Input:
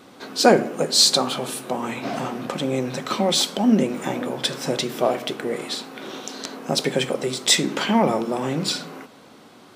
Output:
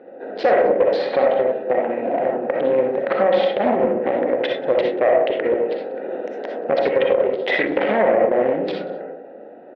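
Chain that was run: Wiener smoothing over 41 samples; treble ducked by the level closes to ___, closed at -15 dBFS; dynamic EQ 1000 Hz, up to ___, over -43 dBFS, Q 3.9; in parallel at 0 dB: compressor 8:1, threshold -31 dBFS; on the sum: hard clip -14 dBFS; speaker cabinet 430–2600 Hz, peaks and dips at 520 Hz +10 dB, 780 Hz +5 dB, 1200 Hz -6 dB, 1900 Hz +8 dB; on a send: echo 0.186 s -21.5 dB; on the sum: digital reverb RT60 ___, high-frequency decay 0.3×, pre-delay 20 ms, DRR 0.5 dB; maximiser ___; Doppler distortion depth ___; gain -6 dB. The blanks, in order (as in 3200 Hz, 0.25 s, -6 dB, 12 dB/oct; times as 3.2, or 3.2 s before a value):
1700 Hz, -4 dB, 0.55 s, +9 dB, 0.16 ms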